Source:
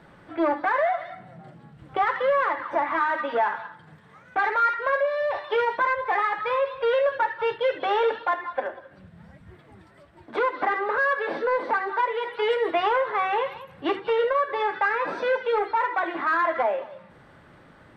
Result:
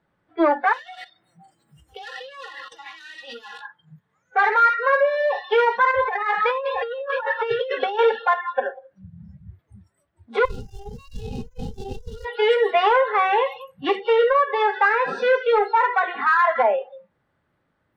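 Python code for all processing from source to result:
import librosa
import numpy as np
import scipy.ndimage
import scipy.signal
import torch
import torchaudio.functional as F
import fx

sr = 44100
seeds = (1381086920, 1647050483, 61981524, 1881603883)

y = fx.chain(x, sr, fx.peak_eq(hz=330.0, db=13.5, octaves=0.32),
    fx.level_steps(step_db=18),
    fx.spectral_comp(ratio=2.0), at=(0.73, 3.61))
y = fx.chain(y, sr, fx.echo_single(ms=660, db=-13.5),
    fx.over_compress(threshold_db=-27.0, ratio=-0.5), at=(5.91, 7.99))
y = fx.chain(y, sr, fx.high_shelf(hz=4300.0, db=-7.0),
    fx.over_compress(threshold_db=-33.0, ratio=-1.0),
    fx.running_max(window=65), at=(10.45, 12.25))
y = fx.noise_reduce_blind(y, sr, reduce_db=25)
y = fx.peak_eq(y, sr, hz=85.0, db=3.0, octaves=0.77)
y = y * 10.0 ** (5.5 / 20.0)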